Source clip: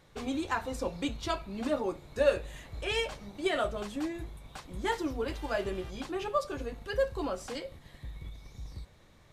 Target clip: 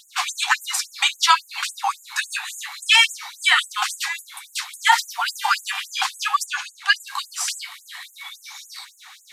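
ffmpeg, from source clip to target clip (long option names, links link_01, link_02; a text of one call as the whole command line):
ffmpeg -i in.wav -filter_complex "[0:a]asettb=1/sr,asplit=3[link_01][link_02][link_03];[link_01]atrim=end=6.464[link_04];[link_02]atrim=start=6.46:end=7,asetpts=PTS-STARTPTS,afade=type=in:duration=0.004:curve=qsin,afade=type=out:start_time=0.536:duration=0.004:curve=qsin,lowpass=8500[link_05];[link_03]atrim=start=6.996[link_06];[link_04][link_05]acrossfade=duration=0.004:curve1=hsin:curve2=qsin[link_07];[link_07][link_06]acrossfade=duration=0.004:curve1=qsin:curve2=hsin,alimiter=level_in=23.5dB:limit=-1dB:release=50:level=0:latency=1,afftfilt=real='re*gte(b*sr/1024,690*pow(6700/690,0.5+0.5*sin(2*PI*3.6*pts/sr)))':imag='im*gte(b*sr/1024,690*pow(6700/690,0.5+0.5*sin(2*PI*3.6*pts/sr)))':win_size=1024:overlap=0.75" out.wav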